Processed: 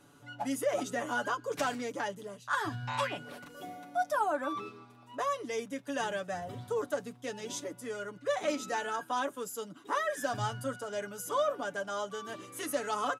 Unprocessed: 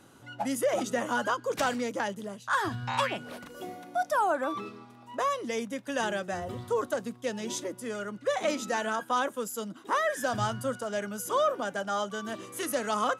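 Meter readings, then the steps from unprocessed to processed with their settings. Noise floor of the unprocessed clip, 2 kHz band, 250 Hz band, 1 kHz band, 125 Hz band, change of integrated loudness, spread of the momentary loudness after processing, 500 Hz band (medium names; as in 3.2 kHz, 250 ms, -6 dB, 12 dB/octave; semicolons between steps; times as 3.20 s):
-52 dBFS, -3.5 dB, -5.0 dB, -4.0 dB, -3.0 dB, -4.0 dB, 10 LU, -3.5 dB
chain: comb 6.9 ms; trim -5.5 dB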